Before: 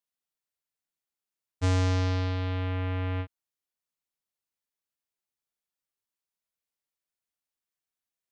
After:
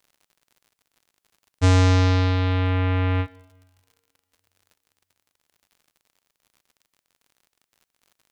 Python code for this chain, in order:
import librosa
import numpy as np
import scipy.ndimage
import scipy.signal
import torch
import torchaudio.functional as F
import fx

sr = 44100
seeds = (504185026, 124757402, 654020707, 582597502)

y = fx.rev_double_slope(x, sr, seeds[0], early_s=0.92, late_s=3.3, knee_db=-24, drr_db=16.5)
y = fx.dmg_crackle(y, sr, seeds[1], per_s=70.0, level_db=-54.0)
y = y * 10.0 ** (8.5 / 20.0)